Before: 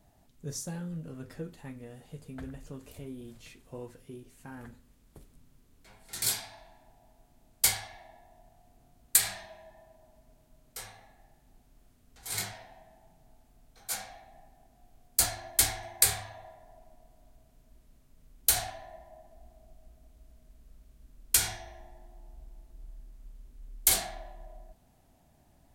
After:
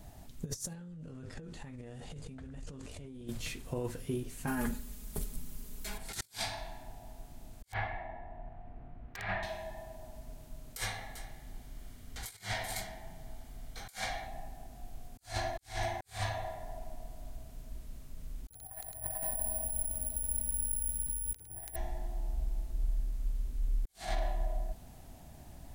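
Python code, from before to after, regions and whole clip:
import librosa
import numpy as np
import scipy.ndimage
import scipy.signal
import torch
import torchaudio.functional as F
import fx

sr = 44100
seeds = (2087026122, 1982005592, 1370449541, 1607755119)

y = fx.chain(x, sr, fx.lowpass(hz=8800.0, slope=24),
    fx.env_flatten(amount_pct=100), at=(0.74, 3.28))
y = fx.chain(y, sr, fx.high_shelf(hz=7000.0, db=11.5),
    fx.comb(ms=4.8, depth=0.86), at=(4.47, 5.98))
y = fx.chain(y, sr, fx.lowpass(hz=2200.0, slope=24),
    fx.overflow_wrap(gain_db=28.5), at=(7.72, 9.43))
y = fx.chain(y, sr, fx.peak_eq(hz=2400.0, db=6.0, octaves=1.1),
    fx.notch(hz=2600.0, q=7.4),
    fx.echo_single(ms=382, db=-19.5), at=(10.77, 14.27))
y = fx.chain(y, sr, fx.env_lowpass_down(base_hz=400.0, full_db=-27.0),
    fx.echo_multitap(ms=(42, 51, 109, 334, 438), db=(-11.5, -11.0, -10.5, -9.0, -8.0)),
    fx.resample_bad(factor=4, down='filtered', up='zero_stuff'), at=(18.49, 21.76))
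y = fx.high_shelf(y, sr, hz=2400.0, db=3.0)
y = fx.over_compress(y, sr, threshold_db=-42.0, ratio=-0.5)
y = fx.low_shelf(y, sr, hz=120.0, db=7.0)
y = y * librosa.db_to_amplitude(1.5)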